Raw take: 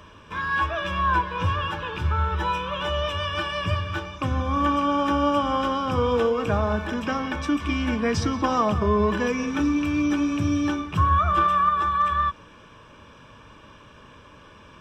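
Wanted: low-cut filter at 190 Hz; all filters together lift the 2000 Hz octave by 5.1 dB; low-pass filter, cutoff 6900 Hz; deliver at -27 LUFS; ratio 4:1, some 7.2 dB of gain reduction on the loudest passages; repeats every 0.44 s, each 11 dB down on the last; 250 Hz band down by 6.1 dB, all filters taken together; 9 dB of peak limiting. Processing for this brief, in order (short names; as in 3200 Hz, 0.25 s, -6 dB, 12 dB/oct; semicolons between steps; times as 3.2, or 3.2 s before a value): HPF 190 Hz; LPF 6900 Hz; bell 250 Hz -6 dB; bell 2000 Hz +7 dB; compressor 4:1, threshold -24 dBFS; limiter -22.5 dBFS; feedback echo 0.44 s, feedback 28%, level -11 dB; gain +2.5 dB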